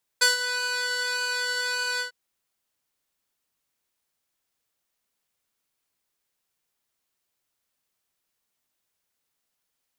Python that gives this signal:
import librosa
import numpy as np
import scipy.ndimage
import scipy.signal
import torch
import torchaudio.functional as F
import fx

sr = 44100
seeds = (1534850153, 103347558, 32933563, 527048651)

y = fx.sub_patch_pwm(sr, seeds[0], note=71, wave2='square', interval_st=19, detune_cents=16, level2_db=-0.5, sub_db=-24.5, noise_db=-29.5, kind='bandpass', cutoff_hz=3100.0, q=0.73, env_oct=1.0, env_decay_s=0.27, env_sustain_pct=40, attack_ms=12.0, decay_s=0.14, sustain_db=-12.5, release_s=0.11, note_s=1.79, lfo_hz=1.7, width_pct=34, width_swing_pct=7)